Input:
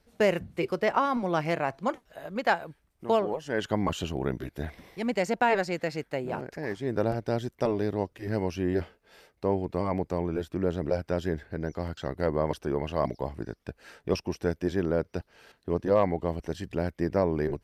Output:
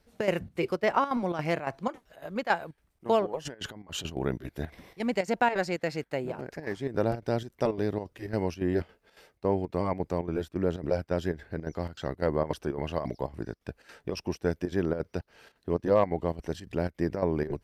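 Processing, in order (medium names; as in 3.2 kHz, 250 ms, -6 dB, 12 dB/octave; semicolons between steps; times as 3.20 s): 3.45–4.05 s: compressor with a negative ratio -41 dBFS, ratio -1; square tremolo 3.6 Hz, depth 65%, duty 75%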